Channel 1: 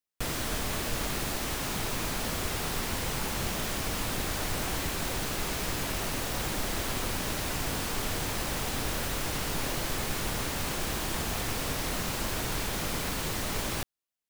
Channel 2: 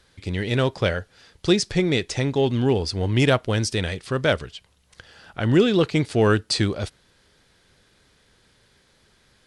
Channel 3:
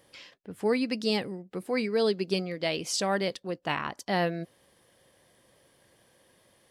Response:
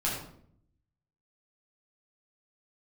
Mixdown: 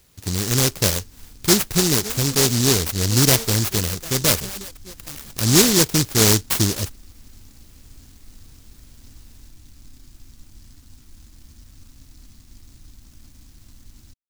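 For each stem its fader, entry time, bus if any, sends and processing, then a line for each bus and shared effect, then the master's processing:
-11.5 dB, 0.30 s, no send, inverse Chebyshev band-stop 610–9400 Hz, stop band 50 dB; comb 3 ms, depth 67%
+2.5 dB, 0.00 s, no send, none
-2.5 dB, 1.40 s, no send, harmonic tremolo 7.5 Hz, depth 70%, crossover 690 Hz; treble shelf 5.6 kHz +10 dB; reverb removal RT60 0.62 s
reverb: none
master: delay time shaken by noise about 5.5 kHz, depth 0.4 ms

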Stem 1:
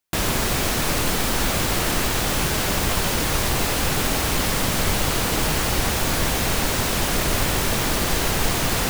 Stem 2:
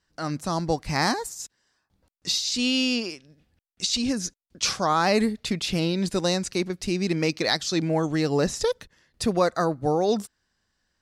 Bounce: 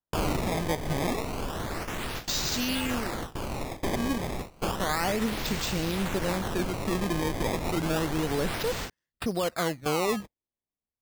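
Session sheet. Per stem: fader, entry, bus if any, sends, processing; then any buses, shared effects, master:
+0.5 dB, 0.00 s, no send, auto duck -12 dB, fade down 0.60 s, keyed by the second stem
-4.0 dB, 0.00 s, no send, none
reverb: none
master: gate with hold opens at -22 dBFS; decimation with a swept rate 18×, swing 160% 0.31 Hz; peak limiter -19 dBFS, peak gain reduction 6 dB

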